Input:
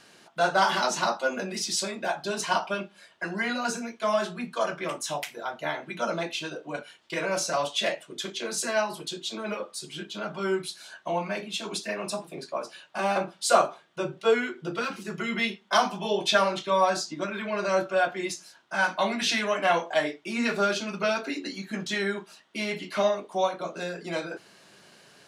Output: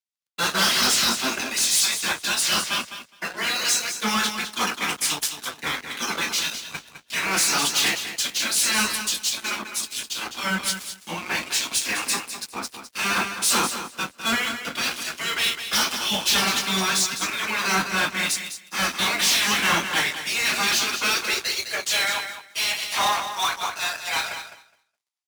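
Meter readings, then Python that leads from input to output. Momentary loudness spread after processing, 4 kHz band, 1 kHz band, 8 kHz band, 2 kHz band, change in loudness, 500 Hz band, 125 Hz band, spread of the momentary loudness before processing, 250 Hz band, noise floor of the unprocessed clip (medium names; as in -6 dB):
10 LU, +10.5 dB, +0.5 dB, +13.0 dB, +6.5 dB, +6.0 dB, -8.5 dB, +1.5 dB, 11 LU, 0.0 dB, -56 dBFS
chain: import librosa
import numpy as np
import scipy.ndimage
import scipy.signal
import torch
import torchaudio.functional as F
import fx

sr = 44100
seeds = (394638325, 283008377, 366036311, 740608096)

p1 = fx.spec_gate(x, sr, threshold_db=-10, keep='weak')
p2 = fx.filter_sweep_highpass(p1, sr, from_hz=230.0, to_hz=730.0, start_s=20.78, end_s=22.08, q=2.6)
p3 = fx.tone_stack(p2, sr, knobs='5-5-5')
p4 = fx.fuzz(p3, sr, gain_db=49.0, gate_db=-57.0)
p5 = p3 + (p4 * librosa.db_to_amplitude(-5.0))
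p6 = fx.mod_noise(p5, sr, seeds[0], snr_db=22)
p7 = scipy.signal.sosfilt(scipy.signal.butter(2, 49.0, 'highpass', fs=sr, output='sos'), p6)
p8 = p7 + fx.echo_feedback(p7, sr, ms=208, feedback_pct=26, wet_db=-6.5, dry=0)
p9 = fx.band_widen(p8, sr, depth_pct=70)
y = p9 * librosa.db_to_amplitude(-2.5)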